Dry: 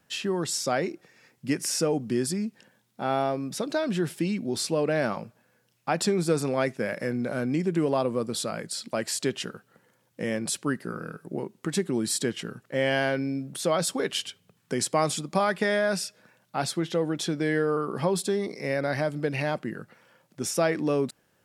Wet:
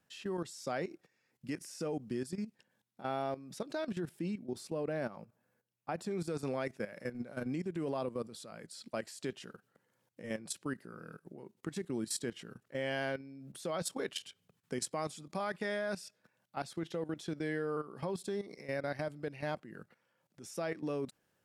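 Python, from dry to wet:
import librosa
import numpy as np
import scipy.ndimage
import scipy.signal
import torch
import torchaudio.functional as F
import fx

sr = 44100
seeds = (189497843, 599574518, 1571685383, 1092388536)

y = fx.peak_eq(x, sr, hz=4100.0, db=-6.0, octaves=2.8, at=(4.0, 6.11))
y = fx.level_steps(y, sr, step_db=14)
y = y * 10.0 ** (-7.5 / 20.0)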